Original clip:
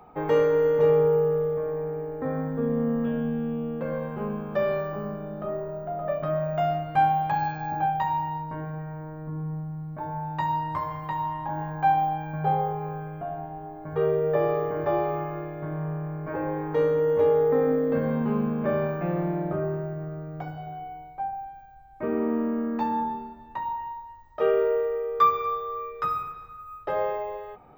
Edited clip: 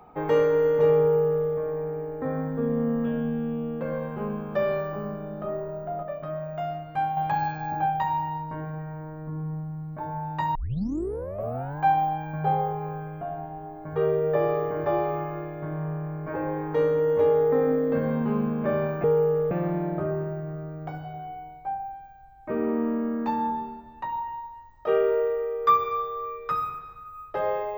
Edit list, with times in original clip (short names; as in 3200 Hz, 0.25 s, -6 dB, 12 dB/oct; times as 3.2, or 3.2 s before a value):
1–1.47 copy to 19.04
6.03–7.17 gain -6 dB
10.55 tape start 1.26 s